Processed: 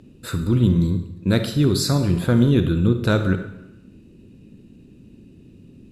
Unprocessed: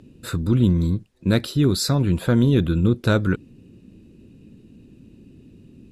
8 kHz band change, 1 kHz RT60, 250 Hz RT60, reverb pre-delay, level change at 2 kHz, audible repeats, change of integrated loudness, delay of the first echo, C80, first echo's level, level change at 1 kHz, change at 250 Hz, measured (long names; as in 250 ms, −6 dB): +0.5 dB, 0.90 s, 0.85 s, 37 ms, +0.5 dB, no echo audible, +1.0 dB, no echo audible, 11.5 dB, no echo audible, +0.5 dB, +1.0 dB